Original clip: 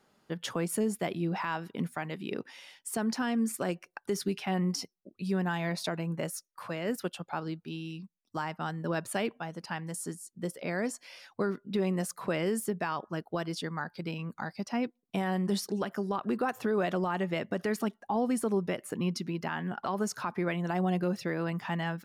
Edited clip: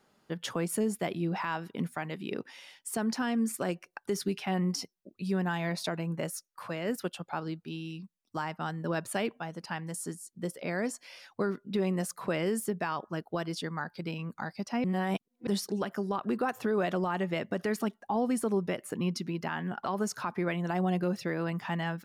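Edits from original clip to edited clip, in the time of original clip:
0:14.84–0:15.47: reverse

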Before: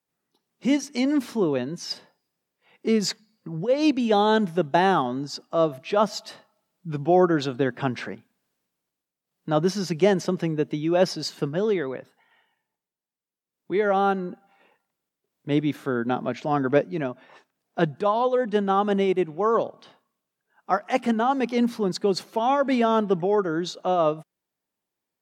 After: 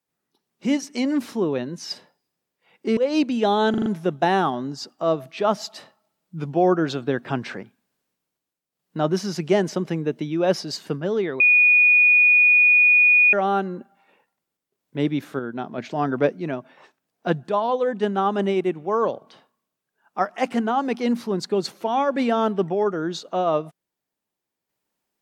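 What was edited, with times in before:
0:02.97–0:03.65: remove
0:04.38: stutter 0.04 s, 5 plays
0:11.92–0:13.85: beep over 2,460 Hz −11.5 dBFS
0:15.91–0:16.30: clip gain −5 dB

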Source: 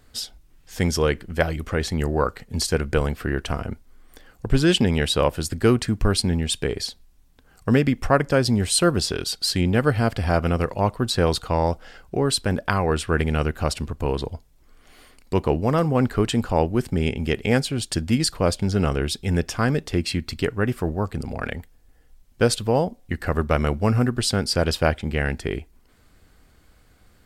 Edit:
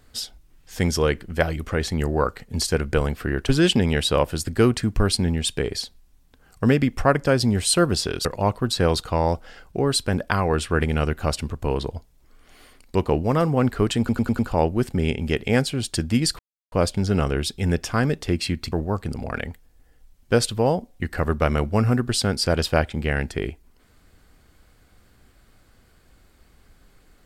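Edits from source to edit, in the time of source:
0:03.49–0:04.54: remove
0:09.30–0:10.63: remove
0:16.37: stutter 0.10 s, 5 plays
0:18.37: splice in silence 0.33 s
0:20.37–0:20.81: remove

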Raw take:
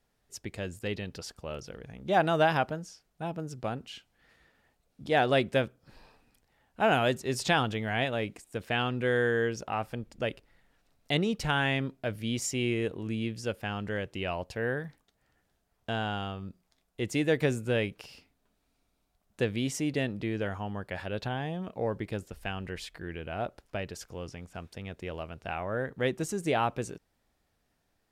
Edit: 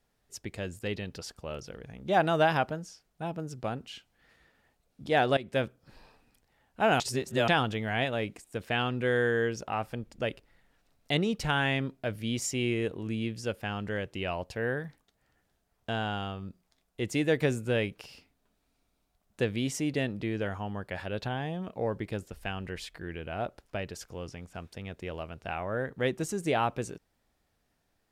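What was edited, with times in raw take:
0:05.37–0:05.64: fade in, from −19.5 dB
0:07.00–0:07.48: reverse

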